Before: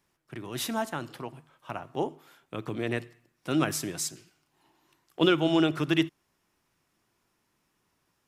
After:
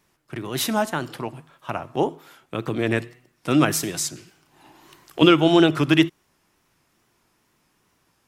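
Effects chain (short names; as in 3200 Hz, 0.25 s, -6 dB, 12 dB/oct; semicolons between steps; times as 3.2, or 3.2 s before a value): wow and flutter 76 cents; 3.83–5.22 three-band squash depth 40%; gain +8 dB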